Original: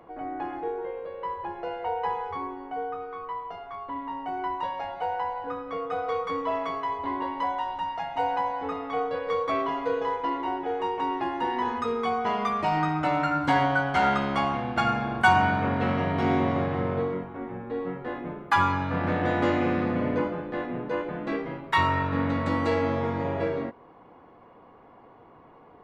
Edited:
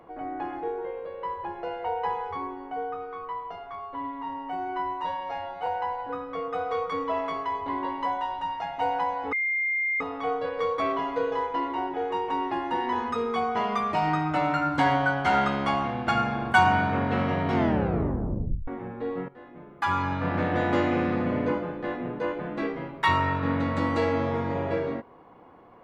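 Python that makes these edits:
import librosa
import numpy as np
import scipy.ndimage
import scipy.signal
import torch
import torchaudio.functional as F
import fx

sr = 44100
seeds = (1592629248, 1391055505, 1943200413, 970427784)

y = fx.edit(x, sr, fx.stretch_span(start_s=3.79, length_s=1.25, factor=1.5),
    fx.insert_tone(at_s=8.7, length_s=0.68, hz=2110.0, db=-23.5),
    fx.tape_stop(start_s=16.23, length_s=1.14),
    fx.fade_in_from(start_s=17.98, length_s=0.83, curve='qua', floor_db=-14.5), tone=tone)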